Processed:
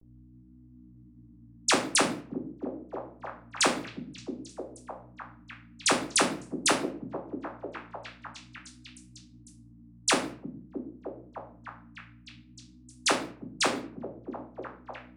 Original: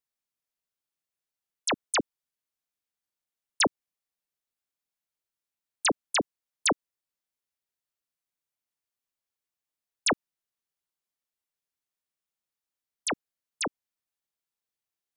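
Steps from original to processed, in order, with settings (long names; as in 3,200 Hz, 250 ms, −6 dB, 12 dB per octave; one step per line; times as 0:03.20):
in parallel at +0.5 dB: compressor whose output falls as the input rises −26 dBFS, ratio −0.5
on the sum: mains hum 60 Hz, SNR 14 dB
rectangular room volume 54 cubic metres, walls mixed, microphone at 0.68 metres
floating-point word with a short mantissa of 4 bits
high-shelf EQ 8,600 Hz +3.5 dB
pitch vibrato 0.49 Hz 71 cents
low-shelf EQ 180 Hz −8.5 dB
low-pass that shuts in the quiet parts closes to 680 Hz, open at −21 dBFS
on a send: echo through a band-pass that steps 312 ms, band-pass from 170 Hz, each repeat 0.7 octaves, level −1.5 dB
on the sum: level −5 dB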